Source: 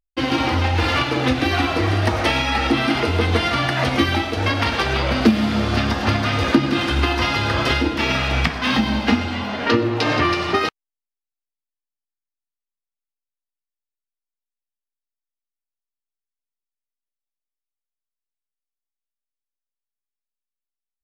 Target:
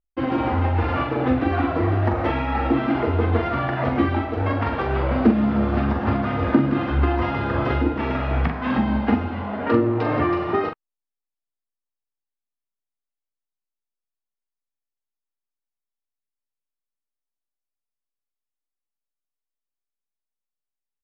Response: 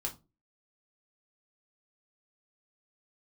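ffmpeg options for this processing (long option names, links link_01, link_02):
-filter_complex "[0:a]lowpass=1300,asplit=2[link_01][link_02];[link_02]adelay=43,volume=-6dB[link_03];[link_01][link_03]amix=inputs=2:normalize=0,volume=-2dB"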